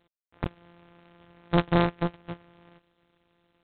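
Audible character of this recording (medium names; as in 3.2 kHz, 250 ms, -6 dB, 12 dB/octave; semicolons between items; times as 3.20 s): a buzz of ramps at a fixed pitch in blocks of 256 samples; G.726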